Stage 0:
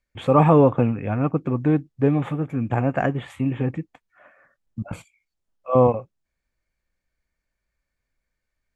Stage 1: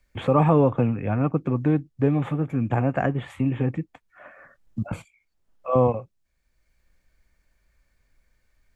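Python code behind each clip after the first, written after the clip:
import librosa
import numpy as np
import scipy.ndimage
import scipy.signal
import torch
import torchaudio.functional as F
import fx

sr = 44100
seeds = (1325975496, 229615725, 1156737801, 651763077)

y = fx.low_shelf(x, sr, hz=84.0, db=6.0)
y = fx.band_squash(y, sr, depth_pct=40)
y = y * 10.0 ** (-2.0 / 20.0)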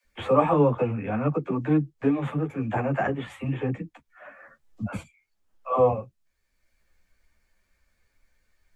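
y = fx.low_shelf(x, sr, hz=300.0, db=-5.0)
y = fx.dispersion(y, sr, late='lows', ms=44.0, hz=300.0)
y = fx.ensemble(y, sr)
y = y * 10.0 ** (3.5 / 20.0)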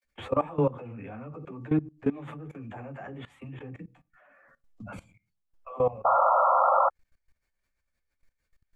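y = fx.room_shoebox(x, sr, seeds[0], volume_m3=140.0, walls='furnished', distance_m=0.31)
y = fx.spec_paint(y, sr, seeds[1], shape='noise', start_s=6.04, length_s=0.86, low_hz=510.0, high_hz=1400.0, level_db=-16.0)
y = fx.level_steps(y, sr, step_db=19)
y = y * 10.0 ** (-2.5 / 20.0)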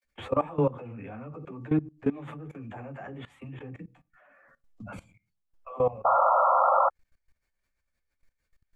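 y = x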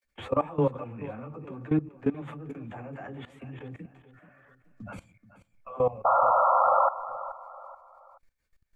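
y = fx.echo_feedback(x, sr, ms=430, feedback_pct=37, wet_db=-15.0)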